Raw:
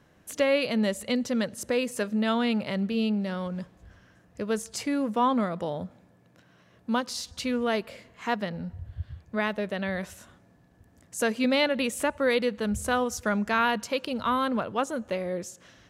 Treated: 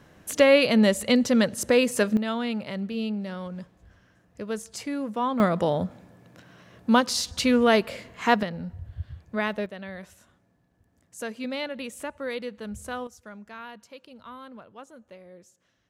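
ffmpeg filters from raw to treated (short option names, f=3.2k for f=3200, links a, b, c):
-af "asetnsamples=n=441:p=0,asendcmd='2.17 volume volume -3dB;5.4 volume volume 7.5dB;8.43 volume volume 0.5dB;9.66 volume volume -8dB;13.07 volume volume -17dB',volume=6.5dB"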